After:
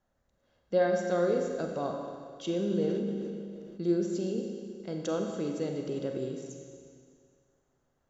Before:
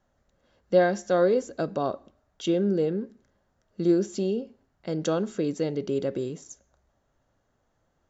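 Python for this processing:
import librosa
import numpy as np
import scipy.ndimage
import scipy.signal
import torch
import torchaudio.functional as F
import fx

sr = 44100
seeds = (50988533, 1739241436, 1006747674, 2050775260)

y = fx.rev_schroeder(x, sr, rt60_s=2.1, comb_ms=31, drr_db=2.5)
y = fx.sustainer(y, sr, db_per_s=23.0, at=(2.65, 3.82))
y = y * librosa.db_to_amplitude(-7.0)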